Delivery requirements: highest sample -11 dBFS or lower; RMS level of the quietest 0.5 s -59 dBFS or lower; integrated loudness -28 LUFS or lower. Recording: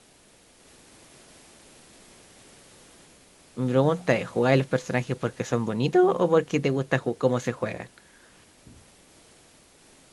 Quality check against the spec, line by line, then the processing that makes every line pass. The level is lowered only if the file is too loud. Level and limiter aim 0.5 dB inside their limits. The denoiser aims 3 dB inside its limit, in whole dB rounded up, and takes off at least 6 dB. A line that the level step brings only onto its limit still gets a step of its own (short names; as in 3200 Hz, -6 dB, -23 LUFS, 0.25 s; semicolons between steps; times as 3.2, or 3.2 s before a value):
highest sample -6.5 dBFS: fail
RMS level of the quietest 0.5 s -56 dBFS: fail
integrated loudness -24.5 LUFS: fail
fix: gain -4 dB; limiter -11.5 dBFS